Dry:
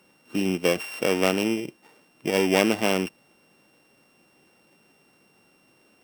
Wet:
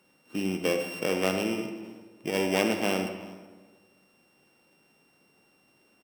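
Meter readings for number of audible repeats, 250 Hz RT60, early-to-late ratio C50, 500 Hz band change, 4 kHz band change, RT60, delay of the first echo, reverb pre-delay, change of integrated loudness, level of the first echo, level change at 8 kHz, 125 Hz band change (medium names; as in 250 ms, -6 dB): 1, 1.5 s, 6.5 dB, -4.5 dB, -4.5 dB, 1.5 s, 375 ms, 39 ms, -4.5 dB, -23.5 dB, -5.0 dB, -4.0 dB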